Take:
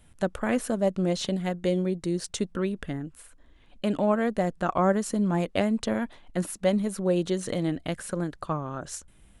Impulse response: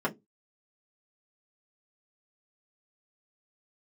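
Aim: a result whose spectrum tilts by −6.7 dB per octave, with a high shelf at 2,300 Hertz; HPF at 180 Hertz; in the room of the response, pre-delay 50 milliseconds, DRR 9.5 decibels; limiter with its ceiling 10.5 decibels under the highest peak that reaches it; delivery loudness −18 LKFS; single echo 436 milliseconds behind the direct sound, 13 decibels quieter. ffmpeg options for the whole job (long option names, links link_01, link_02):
-filter_complex "[0:a]highpass=180,highshelf=frequency=2300:gain=-8.5,alimiter=limit=-22dB:level=0:latency=1,aecho=1:1:436:0.224,asplit=2[link_01][link_02];[1:a]atrim=start_sample=2205,adelay=50[link_03];[link_02][link_03]afir=irnorm=-1:irlink=0,volume=-19dB[link_04];[link_01][link_04]amix=inputs=2:normalize=0,volume=14dB"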